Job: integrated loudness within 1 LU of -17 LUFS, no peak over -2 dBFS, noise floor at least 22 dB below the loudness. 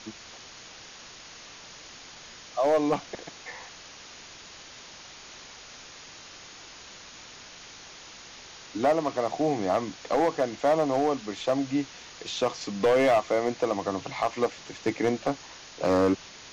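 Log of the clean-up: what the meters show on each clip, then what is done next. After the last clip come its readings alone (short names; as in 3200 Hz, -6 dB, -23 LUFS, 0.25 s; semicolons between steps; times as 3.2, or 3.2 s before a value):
clipped 0.9%; flat tops at -17.0 dBFS; noise floor -47 dBFS; noise floor target -49 dBFS; loudness -27.0 LUFS; peak -17.0 dBFS; loudness target -17.0 LUFS
-> clip repair -17 dBFS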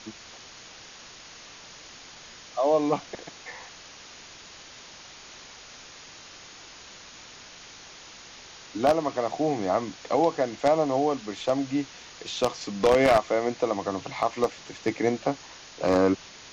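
clipped 0.0%; noise floor -47 dBFS; noise floor target -48 dBFS
-> denoiser 6 dB, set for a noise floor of -47 dBFS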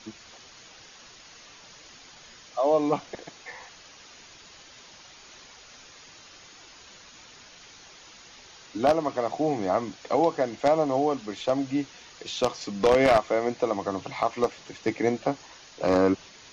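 noise floor -50 dBFS; loudness -26.0 LUFS; peak -8.0 dBFS; loudness target -17.0 LUFS
-> gain +9 dB; limiter -2 dBFS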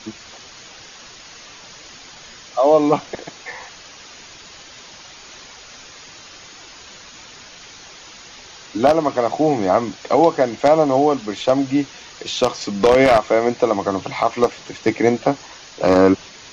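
loudness -17.5 LUFS; peak -2.0 dBFS; noise floor -41 dBFS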